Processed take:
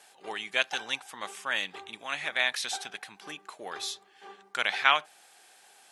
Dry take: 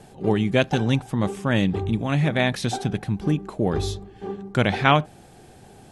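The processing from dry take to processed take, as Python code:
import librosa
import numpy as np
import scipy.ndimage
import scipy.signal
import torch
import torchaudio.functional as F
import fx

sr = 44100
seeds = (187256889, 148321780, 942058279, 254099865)

y = scipy.signal.sosfilt(scipy.signal.butter(2, 1300.0, 'highpass', fs=sr, output='sos'), x)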